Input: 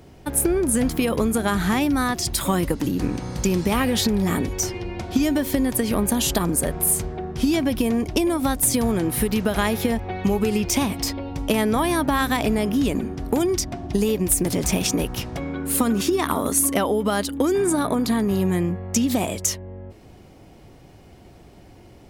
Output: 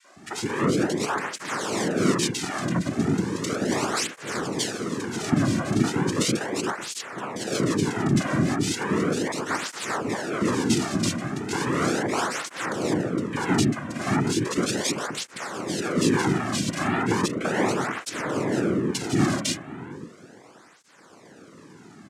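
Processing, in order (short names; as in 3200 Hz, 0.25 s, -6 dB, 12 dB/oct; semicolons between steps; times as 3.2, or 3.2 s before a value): 7.54–7.94 tone controls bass +2 dB, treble +14 dB; limiter -16.5 dBFS, peak gain reduction 10.5 dB; noise vocoder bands 3; three bands offset in time highs, mids, lows 40/160 ms, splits 450/1900 Hz; tape flanging out of phase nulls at 0.36 Hz, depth 2.4 ms; gain +5 dB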